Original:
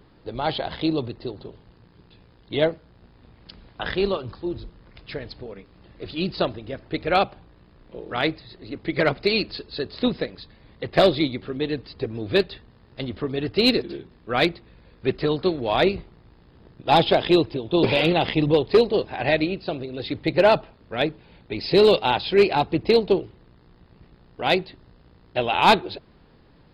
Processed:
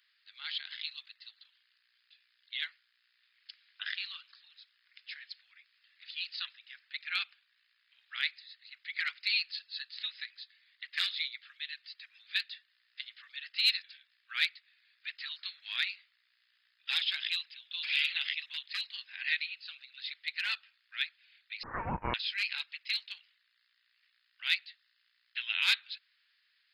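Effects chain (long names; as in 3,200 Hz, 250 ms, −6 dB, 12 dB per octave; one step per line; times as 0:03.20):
Butterworth high-pass 1,700 Hz 36 dB per octave
0:21.63–0:22.14: voice inversion scrambler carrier 3,700 Hz
level −4.5 dB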